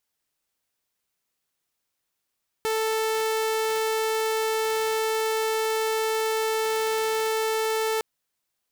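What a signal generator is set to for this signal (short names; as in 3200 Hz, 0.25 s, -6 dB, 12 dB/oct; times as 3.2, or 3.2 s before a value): tone saw 441 Hz -20.5 dBFS 5.36 s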